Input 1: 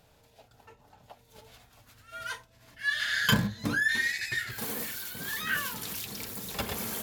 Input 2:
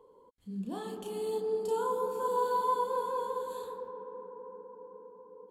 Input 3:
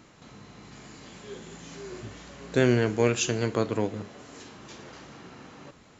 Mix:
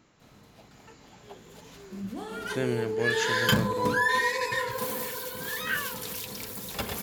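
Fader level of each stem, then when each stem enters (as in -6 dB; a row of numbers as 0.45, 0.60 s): +0.5, +0.5, -8.0 dB; 0.20, 1.45, 0.00 s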